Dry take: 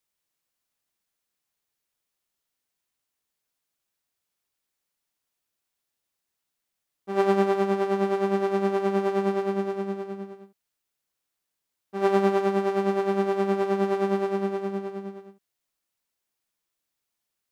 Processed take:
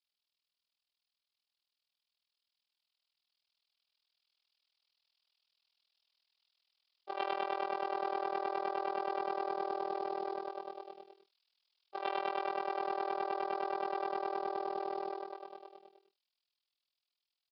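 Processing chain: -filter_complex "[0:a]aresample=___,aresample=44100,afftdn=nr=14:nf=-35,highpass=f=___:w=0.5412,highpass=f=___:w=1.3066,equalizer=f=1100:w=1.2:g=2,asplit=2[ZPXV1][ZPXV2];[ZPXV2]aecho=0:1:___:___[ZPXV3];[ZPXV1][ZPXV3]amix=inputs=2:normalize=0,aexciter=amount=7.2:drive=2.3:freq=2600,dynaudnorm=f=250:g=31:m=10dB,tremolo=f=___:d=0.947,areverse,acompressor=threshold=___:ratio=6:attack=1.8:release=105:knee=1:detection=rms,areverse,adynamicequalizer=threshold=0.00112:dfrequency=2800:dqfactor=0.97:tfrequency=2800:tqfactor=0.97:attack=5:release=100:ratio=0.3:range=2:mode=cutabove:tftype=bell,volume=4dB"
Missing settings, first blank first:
11025, 540, 540, 783, 0.188, 40, -35dB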